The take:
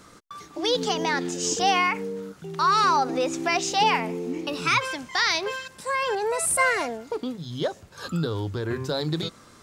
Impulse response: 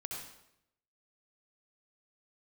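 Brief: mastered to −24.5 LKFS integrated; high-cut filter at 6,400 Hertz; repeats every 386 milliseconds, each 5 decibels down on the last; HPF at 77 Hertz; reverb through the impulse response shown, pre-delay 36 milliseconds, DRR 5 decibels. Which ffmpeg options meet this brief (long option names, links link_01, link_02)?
-filter_complex "[0:a]highpass=77,lowpass=6400,aecho=1:1:386|772|1158|1544|1930|2316|2702:0.562|0.315|0.176|0.0988|0.0553|0.031|0.0173,asplit=2[link_01][link_02];[1:a]atrim=start_sample=2205,adelay=36[link_03];[link_02][link_03]afir=irnorm=-1:irlink=0,volume=-4.5dB[link_04];[link_01][link_04]amix=inputs=2:normalize=0,volume=-2dB"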